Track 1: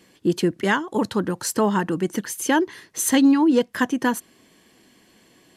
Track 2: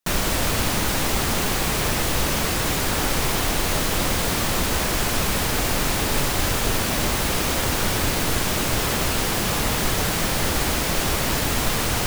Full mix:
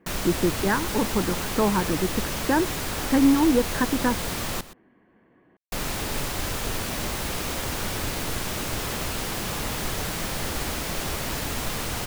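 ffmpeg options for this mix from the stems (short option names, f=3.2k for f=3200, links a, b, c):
-filter_complex "[0:a]lowpass=f=1.8k:w=0.5412,lowpass=f=1.8k:w=1.3066,volume=-2.5dB[a];[1:a]volume=-7dB,asplit=3[b][c][d];[b]atrim=end=4.61,asetpts=PTS-STARTPTS,afade=t=out:st=4.606:d=0.004:c=hsin[e];[c]atrim=start=4.61:end=5.72,asetpts=PTS-STARTPTS,volume=0[f];[d]atrim=start=5.72,asetpts=PTS-STARTPTS,afade=t=in:d=0.004:c=hsin[g];[e][f][g]concat=n=3:v=0:a=1,asplit=2[h][i];[i]volume=-16dB,aecho=0:1:123:1[j];[a][h][j]amix=inputs=3:normalize=0"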